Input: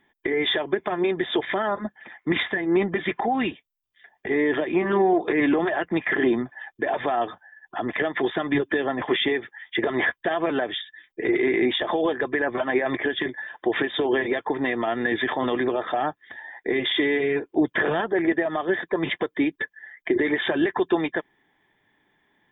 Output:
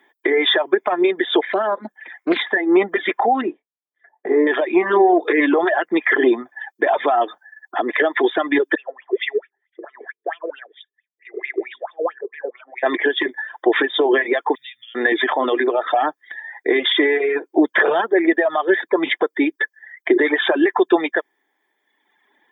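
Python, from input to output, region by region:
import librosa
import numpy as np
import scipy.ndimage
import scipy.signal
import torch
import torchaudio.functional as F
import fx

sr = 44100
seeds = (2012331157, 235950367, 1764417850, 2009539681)

y = fx.chain(x, sr, fx.dynamic_eq(hz=1900.0, q=0.83, threshold_db=-39.0, ratio=4.0, max_db=-6),
    fx.doppler_dist(depth_ms=0.37), at=(1.46, 2.47))
y = fx.chain(y, sr, fx.lowpass(hz=1000.0, slope=12),
    fx.doubler(ms=23.0, db=-8.5), at=(3.41, 4.47))
y = fx.chain(y, sr, fx.hum_notches(base_hz=50, count=9),
    fx.wah_lfo(hz=4.5, low_hz=410.0, high_hz=2800.0, q=8.3),
    fx.band_widen(depth_pct=100), at=(8.75, 12.83))
y = fx.chain(y, sr, fx.cheby2_bandstop(low_hz=290.0, high_hz=960.0, order=4, stop_db=70),
    fx.band_squash(depth_pct=40), at=(14.55, 14.95))
y = fx.dereverb_blind(y, sr, rt60_s=1.3)
y = scipy.signal.sosfilt(scipy.signal.butter(4, 300.0, 'highpass', fs=sr, output='sos'), y)
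y = fx.peak_eq(y, sr, hz=2800.0, db=-5.5, octaves=0.3)
y = y * 10.0 ** (8.5 / 20.0)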